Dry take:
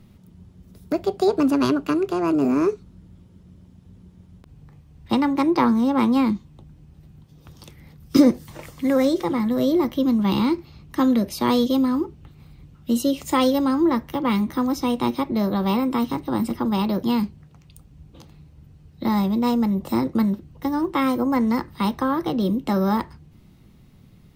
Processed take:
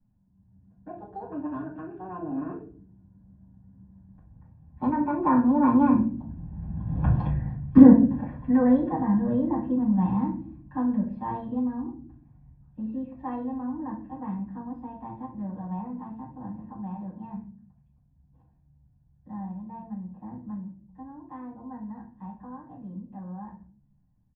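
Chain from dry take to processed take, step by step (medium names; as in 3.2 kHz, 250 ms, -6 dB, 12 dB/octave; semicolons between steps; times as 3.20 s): Doppler pass-by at 7.03 s, 20 m/s, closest 2.4 m; low-pass 1.6 kHz 24 dB/octave; comb 1.2 ms, depth 66%; reverberation RT60 0.45 s, pre-delay 6 ms, DRR -9 dB; level rider gain up to 6.5 dB; trim +2 dB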